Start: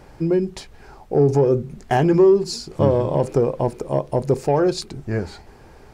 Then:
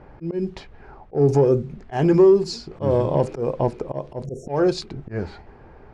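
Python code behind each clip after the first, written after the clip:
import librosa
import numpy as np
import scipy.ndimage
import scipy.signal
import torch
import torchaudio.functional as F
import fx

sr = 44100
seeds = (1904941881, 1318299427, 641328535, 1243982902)

y = fx.env_lowpass(x, sr, base_hz=1800.0, full_db=-11.0)
y = fx.auto_swell(y, sr, attack_ms=138.0)
y = fx.spec_erase(y, sr, start_s=4.26, length_s=0.22, low_hz=730.0, high_hz=5400.0)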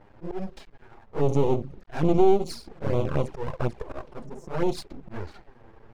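y = np.maximum(x, 0.0)
y = fx.env_flanger(y, sr, rest_ms=10.9, full_db=-17.5)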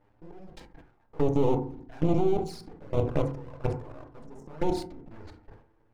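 y = fx.level_steps(x, sr, step_db=22)
y = fx.rev_fdn(y, sr, rt60_s=0.6, lf_ratio=1.55, hf_ratio=0.3, size_ms=20.0, drr_db=7.0)
y = fx.sustainer(y, sr, db_per_s=110.0)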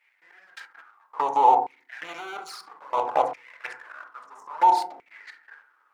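y = fx.filter_lfo_highpass(x, sr, shape='saw_down', hz=0.6, low_hz=730.0, high_hz=2300.0, q=7.5)
y = y * librosa.db_to_amplitude(5.0)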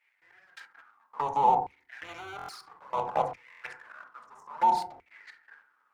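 y = fx.octave_divider(x, sr, octaves=2, level_db=-4.0)
y = fx.buffer_glitch(y, sr, at_s=(2.37, 3.5), block=1024, repeats=4)
y = y * librosa.db_to_amplitude(-5.5)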